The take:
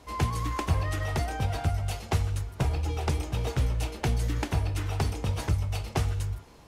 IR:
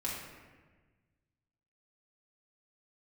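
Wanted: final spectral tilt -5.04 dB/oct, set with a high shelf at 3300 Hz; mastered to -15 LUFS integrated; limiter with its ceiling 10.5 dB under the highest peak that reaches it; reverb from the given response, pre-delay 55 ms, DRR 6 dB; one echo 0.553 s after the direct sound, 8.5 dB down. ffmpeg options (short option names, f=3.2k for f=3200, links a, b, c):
-filter_complex "[0:a]highshelf=f=3.3k:g=7.5,alimiter=limit=-22.5dB:level=0:latency=1,aecho=1:1:553:0.376,asplit=2[a][b];[1:a]atrim=start_sample=2205,adelay=55[c];[b][c]afir=irnorm=-1:irlink=0,volume=-9.5dB[d];[a][d]amix=inputs=2:normalize=0,volume=16.5dB"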